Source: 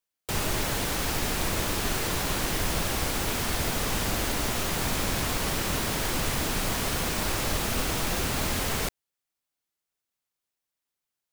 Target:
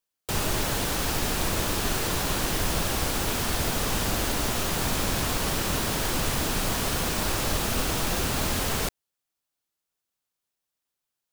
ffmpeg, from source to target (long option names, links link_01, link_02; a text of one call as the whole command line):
ffmpeg -i in.wav -af "equalizer=frequency=2100:width=3.7:gain=-3,volume=1.5dB" out.wav